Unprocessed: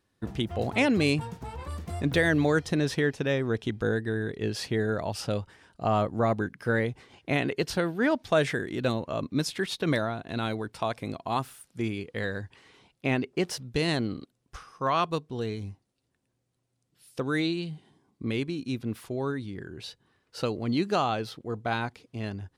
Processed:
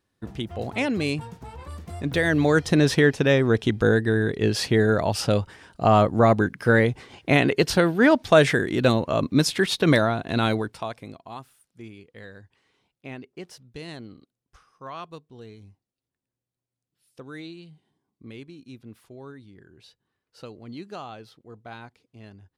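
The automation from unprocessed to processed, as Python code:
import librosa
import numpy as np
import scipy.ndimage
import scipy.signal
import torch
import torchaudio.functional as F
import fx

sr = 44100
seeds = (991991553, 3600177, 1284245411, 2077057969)

y = fx.gain(x, sr, db=fx.line((1.98, -1.5), (2.8, 8.0), (10.57, 8.0), (10.82, -1.5), (11.45, -11.5)))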